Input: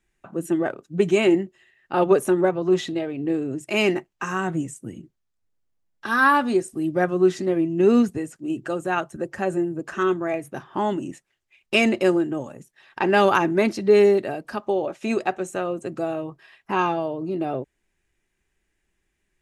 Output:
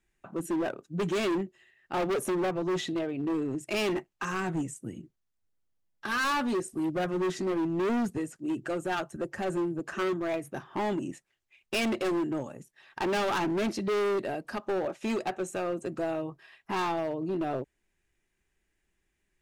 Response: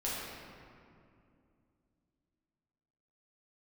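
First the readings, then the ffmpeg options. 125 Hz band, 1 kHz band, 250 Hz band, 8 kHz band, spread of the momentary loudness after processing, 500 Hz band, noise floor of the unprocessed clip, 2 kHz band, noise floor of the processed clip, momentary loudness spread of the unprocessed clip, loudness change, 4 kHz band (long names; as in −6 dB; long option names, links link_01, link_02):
−6.5 dB, −8.0 dB, −7.5 dB, −3.0 dB, 9 LU, −9.5 dB, −75 dBFS, −8.5 dB, −79 dBFS, 13 LU, −8.5 dB, −5.5 dB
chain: -af "volume=22.5dB,asoftclip=hard,volume=-22.5dB,volume=-3.5dB"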